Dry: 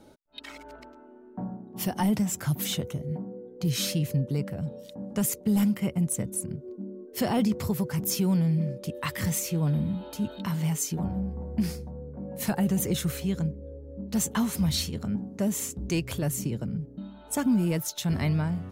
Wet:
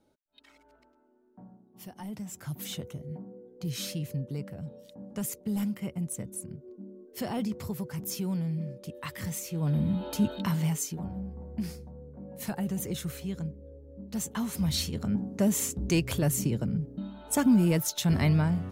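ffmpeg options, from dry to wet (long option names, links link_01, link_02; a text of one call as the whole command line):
ffmpeg -i in.wav -af "volume=13dB,afade=type=in:start_time=2.03:duration=0.77:silence=0.354813,afade=type=in:start_time=9.51:duration=0.64:silence=0.266073,afade=type=out:start_time=10.15:duration=0.82:silence=0.281838,afade=type=in:start_time=14.35:duration=0.94:silence=0.375837" out.wav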